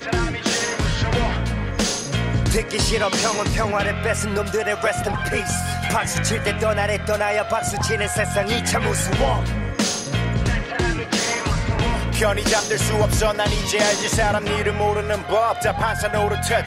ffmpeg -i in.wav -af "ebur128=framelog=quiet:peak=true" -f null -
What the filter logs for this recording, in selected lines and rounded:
Integrated loudness:
  I:         -20.9 LUFS
  Threshold: -30.9 LUFS
Loudness range:
  LRA:         2.0 LU
  Threshold: -40.9 LUFS
  LRA low:   -21.7 LUFS
  LRA high:  -19.6 LUFS
True peak:
  Peak:       -7.0 dBFS